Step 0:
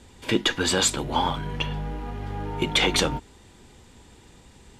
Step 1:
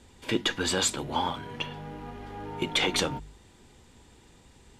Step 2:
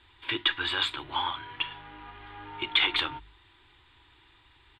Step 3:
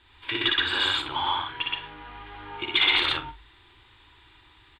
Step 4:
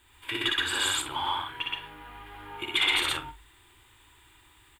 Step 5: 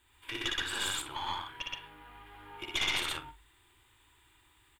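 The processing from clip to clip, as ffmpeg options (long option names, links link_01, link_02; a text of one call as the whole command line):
ffmpeg -i in.wav -af "bandreject=frequency=50.23:width_type=h:width=4,bandreject=frequency=100.46:width_type=h:width=4,bandreject=frequency=150.69:width_type=h:width=4,bandreject=frequency=200.92:width_type=h:width=4,volume=-4.5dB" out.wav
ffmpeg -i in.wav -af "firequalizer=gain_entry='entry(120,0);entry(190,-21);entry(320,3);entry(480,-10);entry(1000,9);entry(2200,10);entry(3600,11);entry(5800,-22);entry(8400,-13)':delay=0.05:min_phase=1,volume=-7dB" out.wav
ffmpeg -i in.wav -af "aecho=1:1:58.31|122.4|166.2:0.794|1|0.282" out.wav
ffmpeg -i in.wav -af "aexciter=amount=7.1:drive=8.2:freq=5900,volume=-3dB" out.wav
ffmpeg -i in.wav -af "aeval=exprs='(tanh(7.94*val(0)+0.75)-tanh(0.75))/7.94':channel_layout=same,volume=-2.5dB" out.wav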